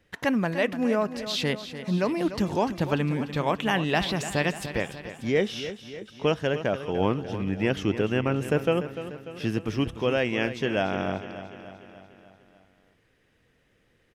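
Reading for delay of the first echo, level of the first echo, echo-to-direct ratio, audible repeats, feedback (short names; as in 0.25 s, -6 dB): 0.295 s, -12.0 dB, -10.5 dB, 5, 57%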